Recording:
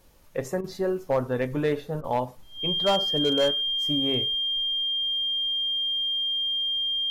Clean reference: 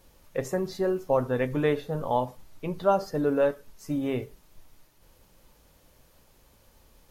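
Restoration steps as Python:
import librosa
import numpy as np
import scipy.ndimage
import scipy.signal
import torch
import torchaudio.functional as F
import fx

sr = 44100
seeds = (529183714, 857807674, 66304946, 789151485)

y = fx.fix_declip(x, sr, threshold_db=-16.5)
y = fx.notch(y, sr, hz=3200.0, q=30.0)
y = fx.fix_interpolate(y, sr, at_s=(0.61, 2.01), length_ms=29.0)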